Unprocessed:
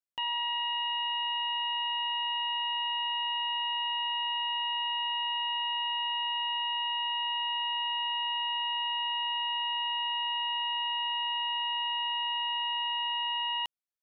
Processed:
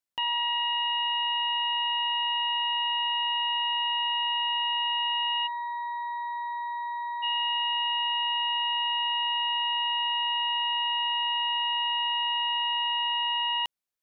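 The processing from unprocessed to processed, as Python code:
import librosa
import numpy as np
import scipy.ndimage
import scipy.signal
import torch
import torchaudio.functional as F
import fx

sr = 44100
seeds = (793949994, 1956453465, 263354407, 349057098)

y = fx.fixed_phaser(x, sr, hz=1200.0, stages=4, at=(5.46, 7.22), fade=0.02)
y = y * 10.0 ** (4.0 / 20.0)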